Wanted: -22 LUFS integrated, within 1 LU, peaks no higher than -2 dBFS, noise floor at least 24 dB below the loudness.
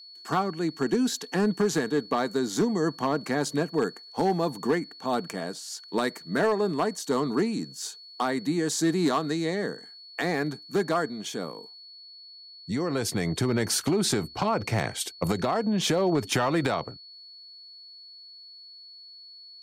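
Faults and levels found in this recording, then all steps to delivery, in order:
clipped 0.5%; flat tops at -17.0 dBFS; steady tone 4400 Hz; tone level -45 dBFS; loudness -27.5 LUFS; peak -17.0 dBFS; loudness target -22.0 LUFS
-> clip repair -17 dBFS; notch 4400 Hz, Q 30; gain +5.5 dB

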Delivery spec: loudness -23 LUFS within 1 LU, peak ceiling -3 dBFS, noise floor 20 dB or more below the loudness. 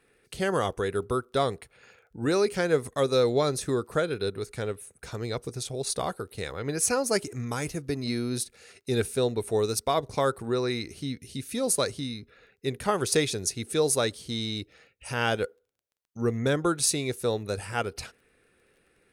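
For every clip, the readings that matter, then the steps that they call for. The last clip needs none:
ticks 15/s; loudness -28.5 LUFS; peak -11.0 dBFS; loudness target -23.0 LUFS
-> de-click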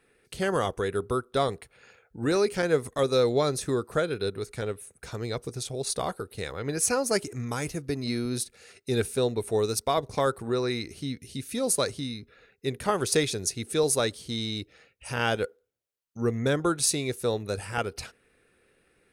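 ticks 0/s; loudness -28.5 LUFS; peak -11.0 dBFS; loudness target -23.0 LUFS
-> gain +5.5 dB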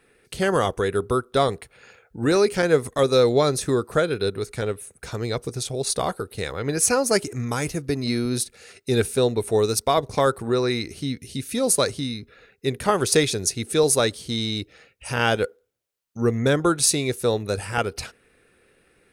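loudness -23.0 LUFS; peak -5.5 dBFS; noise floor -63 dBFS

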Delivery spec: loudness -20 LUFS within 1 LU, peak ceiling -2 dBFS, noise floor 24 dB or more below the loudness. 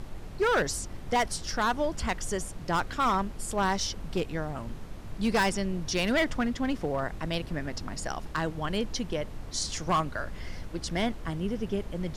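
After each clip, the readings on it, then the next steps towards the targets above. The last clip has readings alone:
clipped 1.3%; flat tops at -20.0 dBFS; noise floor -41 dBFS; noise floor target -55 dBFS; loudness -30.5 LUFS; peak -20.0 dBFS; loudness target -20.0 LUFS
-> clip repair -20 dBFS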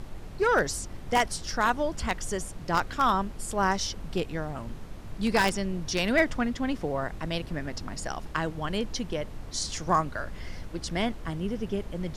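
clipped 0.0%; noise floor -41 dBFS; noise floor target -53 dBFS
-> noise print and reduce 12 dB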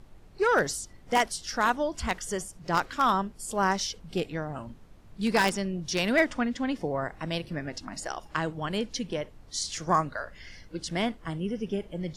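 noise floor -52 dBFS; noise floor target -54 dBFS
-> noise print and reduce 6 dB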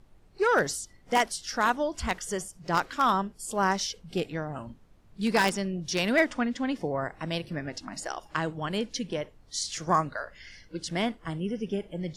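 noise floor -57 dBFS; loudness -29.5 LUFS; peak -10.5 dBFS; loudness target -20.0 LUFS
-> gain +9.5 dB; limiter -2 dBFS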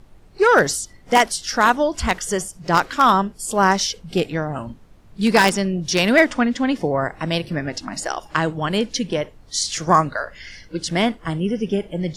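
loudness -20.0 LUFS; peak -2.0 dBFS; noise floor -48 dBFS

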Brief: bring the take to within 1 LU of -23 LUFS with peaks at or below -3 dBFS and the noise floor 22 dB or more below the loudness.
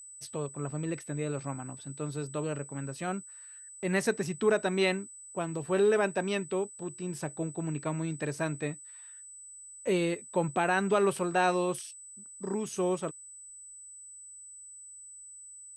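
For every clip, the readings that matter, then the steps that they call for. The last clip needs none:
steady tone 8000 Hz; tone level -46 dBFS; loudness -31.5 LUFS; peak -13.0 dBFS; loudness target -23.0 LUFS
-> notch 8000 Hz, Q 30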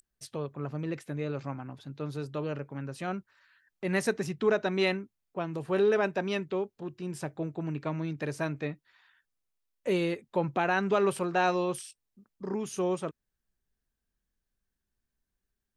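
steady tone none; loudness -31.5 LUFS; peak -13.5 dBFS; loudness target -23.0 LUFS
-> gain +8.5 dB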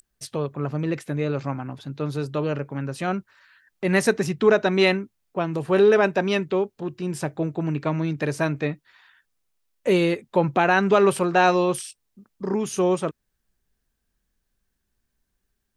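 loudness -23.0 LUFS; peak -5.0 dBFS; noise floor -77 dBFS

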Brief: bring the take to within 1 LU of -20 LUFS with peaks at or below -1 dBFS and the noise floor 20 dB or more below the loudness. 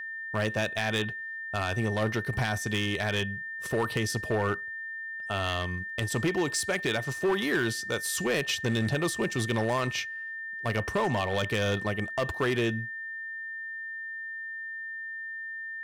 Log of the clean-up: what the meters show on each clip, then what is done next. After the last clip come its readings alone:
clipped 1.9%; flat tops at -21.5 dBFS; steady tone 1800 Hz; tone level -35 dBFS; loudness -30.0 LUFS; peak -21.5 dBFS; loudness target -20.0 LUFS
-> clip repair -21.5 dBFS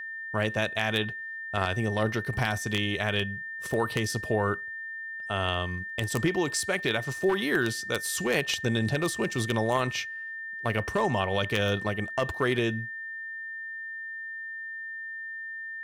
clipped 0.0%; steady tone 1800 Hz; tone level -35 dBFS
-> notch 1800 Hz, Q 30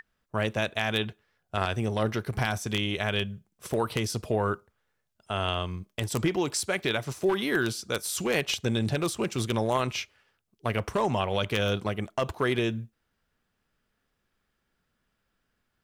steady tone none; loudness -29.0 LUFS; peak -12.0 dBFS; loudness target -20.0 LUFS
-> gain +9 dB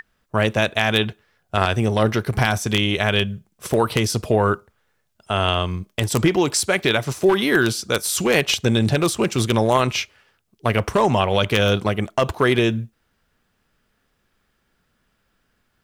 loudness -20.0 LUFS; peak -3.0 dBFS; noise floor -69 dBFS

